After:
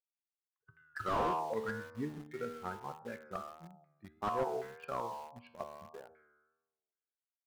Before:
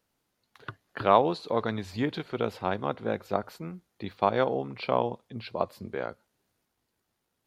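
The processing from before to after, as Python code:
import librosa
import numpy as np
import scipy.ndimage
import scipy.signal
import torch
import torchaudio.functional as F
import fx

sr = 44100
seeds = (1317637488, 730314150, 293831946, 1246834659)

p1 = fx.bin_expand(x, sr, power=2.0)
p2 = fx.comb_fb(p1, sr, f0_hz=77.0, decay_s=1.2, harmonics='all', damping=0.0, mix_pct=80)
p3 = p2 + fx.echo_feedback(p2, sr, ms=124, feedback_pct=34, wet_db=-22, dry=0)
p4 = fx.filter_lfo_lowpass(p3, sr, shape='saw_down', hz=1.3, low_hz=740.0, high_hz=2100.0, q=5.0)
p5 = fx.vibrato(p4, sr, rate_hz=1.7, depth_cents=72.0)
p6 = fx.quant_dither(p5, sr, seeds[0], bits=8, dither='none')
p7 = p5 + F.gain(torch.from_numpy(p6), -9.0).numpy()
p8 = fx.slew_limit(p7, sr, full_power_hz=23.0)
y = F.gain(torch.from_numpy(p8), 1.0).numpy()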